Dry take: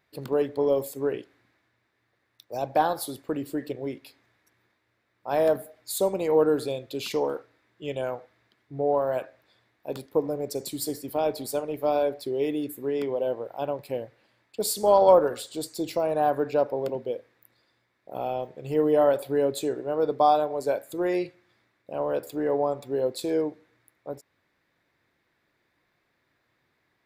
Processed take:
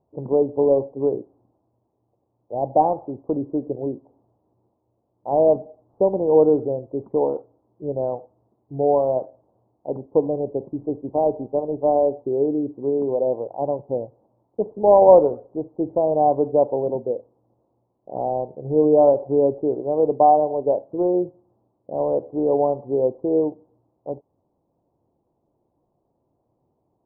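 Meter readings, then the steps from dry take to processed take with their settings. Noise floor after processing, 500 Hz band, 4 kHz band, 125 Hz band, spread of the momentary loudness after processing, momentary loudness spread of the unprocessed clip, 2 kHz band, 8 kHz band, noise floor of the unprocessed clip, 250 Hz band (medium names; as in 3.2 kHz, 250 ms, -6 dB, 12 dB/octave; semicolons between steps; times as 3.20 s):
-72 dBFS, +6.0 dB, under -40 dB, +6.0 dB, 16 LU, 16 LU, under -30 dB, under -40 dB, -74 dBFS, +6.0 dB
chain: steep low-pass 910 Hz 48 dB/octave; trim +6 dB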